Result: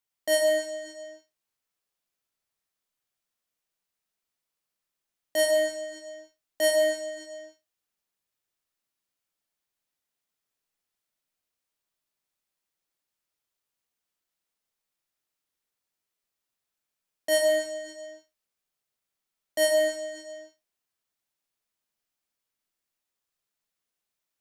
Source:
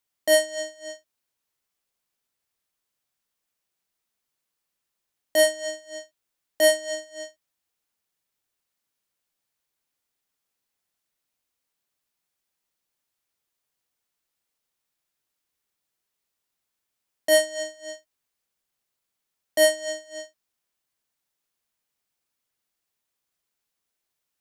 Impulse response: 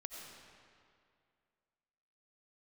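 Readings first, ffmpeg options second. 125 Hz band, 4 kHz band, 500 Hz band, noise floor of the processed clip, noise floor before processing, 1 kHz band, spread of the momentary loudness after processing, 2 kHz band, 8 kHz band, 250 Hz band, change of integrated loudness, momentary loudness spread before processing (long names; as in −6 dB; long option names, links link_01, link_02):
can't be measured, −4.0 dB, −1.0 dB, below −85 dBFS, −82 dBFS, −2.5 dB, 21 LU, −3.5 dB, −4.5 dB, −1.5 dB, −3.0 dB, 19 LU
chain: -filter_complex "[1:a]atrim=start_sample=2205,afade=type=out:start_time=0.36:duration=0.01,atrim=end_sample=16317[link_01];[0:a][link_01]afir=irnorm=-1:irlink=0"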